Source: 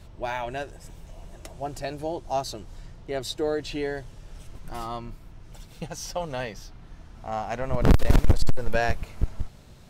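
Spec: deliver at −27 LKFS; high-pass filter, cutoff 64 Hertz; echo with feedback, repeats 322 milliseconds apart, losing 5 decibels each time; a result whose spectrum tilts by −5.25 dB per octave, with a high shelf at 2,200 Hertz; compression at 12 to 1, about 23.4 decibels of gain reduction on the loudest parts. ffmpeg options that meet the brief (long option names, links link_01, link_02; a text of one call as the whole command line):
ffmpeg -i in.wav -af "highpass=64,highshelf=frequency=2200:gain=-6,acompressor=threshold=-38dB:ratio=12,aecho=1:1:322|644|966|1288|1610|1932|2254:0.562|0.315|0.176|0.0988|0.0553|0.031|0.0173,volume=16dB" out.wav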